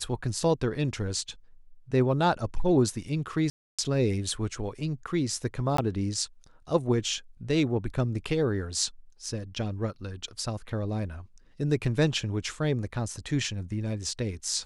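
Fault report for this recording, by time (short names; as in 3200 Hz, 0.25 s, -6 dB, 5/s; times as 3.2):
3.5–3.79 gap 0.286 s
5.77–5.78 gap 14 ms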